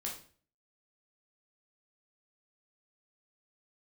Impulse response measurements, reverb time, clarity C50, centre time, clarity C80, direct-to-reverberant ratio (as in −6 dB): 0.45 s, 6.5 dB, 27 ms, 11.5 dB, −2.5 dB